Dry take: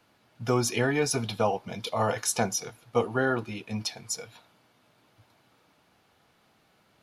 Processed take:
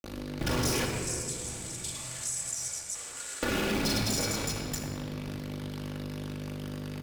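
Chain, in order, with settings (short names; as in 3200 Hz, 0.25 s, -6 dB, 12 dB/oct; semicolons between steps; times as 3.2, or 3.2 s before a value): cycle switcher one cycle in 3, muted; spectral noise reduction 7 dB; hum 50 Hz, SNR 23 dB; reverse bouncing-ball echo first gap 40 ms, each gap 1.6×, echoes 5; fuzz box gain 47 dB, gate -48 dBFS; 0.85–3.43 band-pass 7900 Hz, Q 6.5; compressor, threshold -23 dBFS, peak gain reduction 9 dB; shoebox room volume 3600 m³, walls mixed, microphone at 2.4 m; three-band squash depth 40%; gain -7.5 dB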